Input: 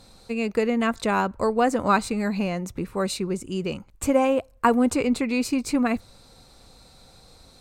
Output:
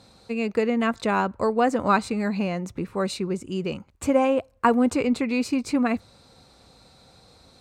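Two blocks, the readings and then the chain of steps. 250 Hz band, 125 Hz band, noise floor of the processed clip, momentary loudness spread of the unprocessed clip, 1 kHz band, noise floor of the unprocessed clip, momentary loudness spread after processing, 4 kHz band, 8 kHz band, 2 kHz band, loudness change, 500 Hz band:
0.0 dB, 0.0 dB, −56 dBFS, 9 LU, 0.0 dB, −53 dBFS, 9 LU, −1.5 dB, −4.5 dB, −0.5 dB, 0.0 dB, 0.0 dB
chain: high-pass filter 69 Hz 12 dB per octave
high-shelf EQ 8,800 Hz −11.5 dB

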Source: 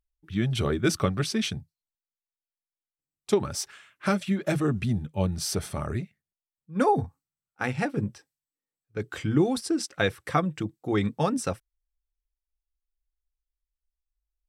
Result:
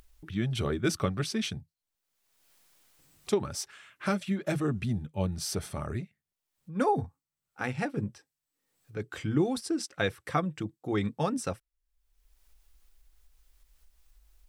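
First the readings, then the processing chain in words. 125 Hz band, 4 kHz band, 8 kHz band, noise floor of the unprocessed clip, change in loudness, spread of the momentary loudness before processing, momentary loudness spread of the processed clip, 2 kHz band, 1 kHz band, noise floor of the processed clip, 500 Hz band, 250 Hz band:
−4.0 dB, −4.0 dB, −4.0 dB, below −85 dBFS, −4.0 dB, 11 LU, 11 LU, −4.0 dB, −4.0 dB, below −85 dBFS, −4.0 dB, −4.0 dB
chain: upward compression, threshold −33 dBFS
level −4 dB

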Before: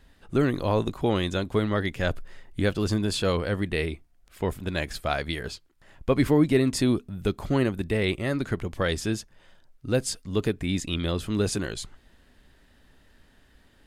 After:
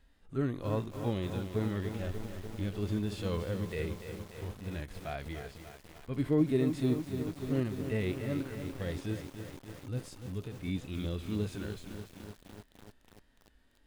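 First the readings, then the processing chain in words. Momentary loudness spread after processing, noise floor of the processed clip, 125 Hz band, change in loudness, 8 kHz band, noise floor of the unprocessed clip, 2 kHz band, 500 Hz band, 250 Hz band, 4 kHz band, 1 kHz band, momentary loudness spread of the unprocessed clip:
15 LU, −65 dBFS, −6.0 dB, −8.5 dB, −16.0 dB, −60 dBFS, −13.5 dB, −9.5 dB, −7.5 dB, −14.5 dB, −12.5 dB, 10 LU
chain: tape wow and flutter 34 cents
harmonic and percussive parts rebalanced percussive −18 dB
feedback echo at a low word length 293 ms, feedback 80%, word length 7 bits, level −8.5 dB
level −6 dB

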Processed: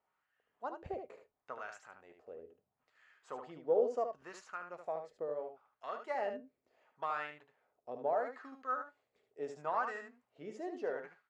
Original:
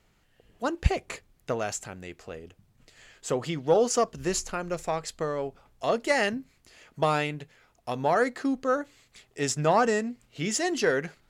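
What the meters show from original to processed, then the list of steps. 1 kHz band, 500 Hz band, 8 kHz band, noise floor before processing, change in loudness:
−10.0 dB, −11.0 dB, below −30 dB, −66 dBFS, −12.0 dB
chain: LFO wah 0.73 Hz 470–1,400 Hz, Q 2.2
tuned comb filter 85 Hz, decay 0.2 s, harmonics odd, mix 50%
on a send: single-tap delay 74 ms −7 dB
on the sum: level −3 dB

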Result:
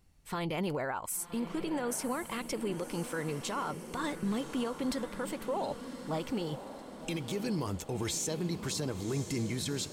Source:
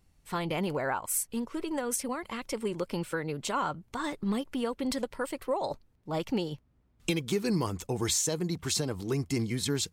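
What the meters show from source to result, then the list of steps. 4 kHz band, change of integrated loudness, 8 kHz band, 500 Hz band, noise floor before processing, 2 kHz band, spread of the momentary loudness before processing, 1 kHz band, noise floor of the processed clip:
−4.5 dB, −3.5 dB, −5.0 dB, −3.0 dB, −67 dBFS, −3.0 dB, 7 LU, −3.0 dB, −48 dBFS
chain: brickwall limiter −26 dBFS, peak gain reduction 10 dB
on a send: feedback delay with all-pass diffusion 1,076 ms, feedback 57%, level −10.5 dB

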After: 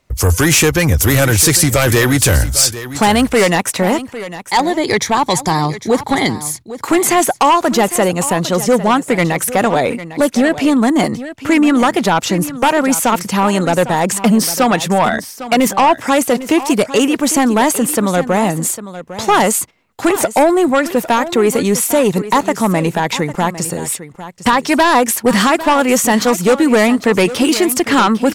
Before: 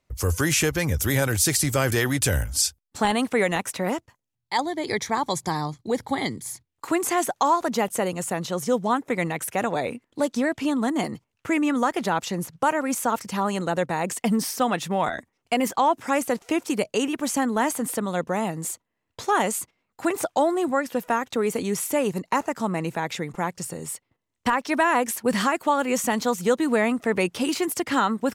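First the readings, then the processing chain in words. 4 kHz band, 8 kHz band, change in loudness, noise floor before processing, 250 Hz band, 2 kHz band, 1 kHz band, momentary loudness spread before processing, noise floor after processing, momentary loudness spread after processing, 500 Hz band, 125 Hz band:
+12.0 dB, +11.5 dB, +11.0 dB, −79 dBFS, +11.5 dB, +10.5 dB, +10.0 dB, 8 LU, −36 dBFS, 6 LU, +11.0 dB, +11.5 dB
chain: sine wavefolder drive 7 dB, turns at −8 dBFS
single-tap delay 803 ms −14 dB
level +2 dB

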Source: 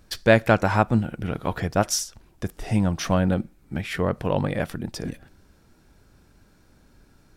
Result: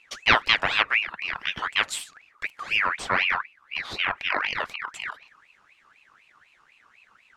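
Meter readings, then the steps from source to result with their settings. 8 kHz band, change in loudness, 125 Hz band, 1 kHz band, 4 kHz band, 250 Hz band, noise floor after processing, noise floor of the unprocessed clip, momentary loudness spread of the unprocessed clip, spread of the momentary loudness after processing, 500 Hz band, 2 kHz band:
−8.0 dB, −0.5 dB, −21.0 dB, 0.0 dB, +8.0 dB, −19.0 dB, −61 dBFS, −58 dBFS, 15 LU, 14 LU, −13.5 dB, +7.0 dB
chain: high-frequency loss of the air 65 metres
ring modulator whose carrier an LFO sweeps 1,900 Hz, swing 40%, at 4 Hz

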